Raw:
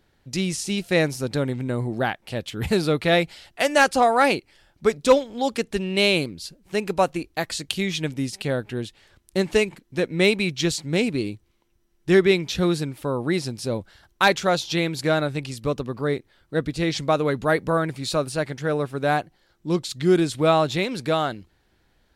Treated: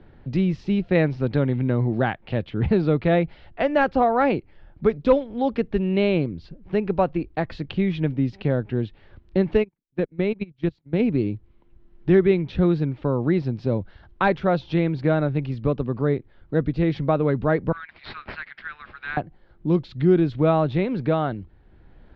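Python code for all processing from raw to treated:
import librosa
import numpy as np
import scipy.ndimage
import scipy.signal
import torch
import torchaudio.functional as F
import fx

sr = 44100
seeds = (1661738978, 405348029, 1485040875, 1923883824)

y = fx.chain(x, sr, fx.lowpass(hz=4300.0, slope=12),
    fx.high_shelf(hz=2100.0, db=10.5), at=(0.95, 2.44))
y = fx.chain(y, sr, fx.level_steps(step_db=11),
    fx.upward_expand(threshold_db=-43.0, expansion=2.5), at=(9.62, 11.0))
y = fx.chain(y, sr, fx.cheby2_highpass(hz=600.0, order=4, stop_db=50),
    fx.resample_bad(factor=4, down='none', up='filtered'), at=(17.72, 19.17))
y = scipy.signal.sosfilt(scipy.signal.bessel(6, 2600.0, 'lowpass', norm='mag', fs=sr, output='sos'), y)
y = fx.tilt_eq(y, sr, slope=-2.5)
y = fx.band_squash(y, sr, depth_pct=40)
y = y * 10.0 ** (-2.0 / 20.0)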